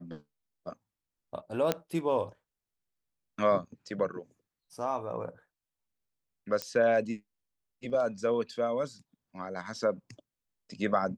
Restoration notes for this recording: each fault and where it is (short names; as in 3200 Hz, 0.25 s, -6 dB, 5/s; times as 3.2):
1.72 pop -12 dBFS
6.62 pop -17 dBFS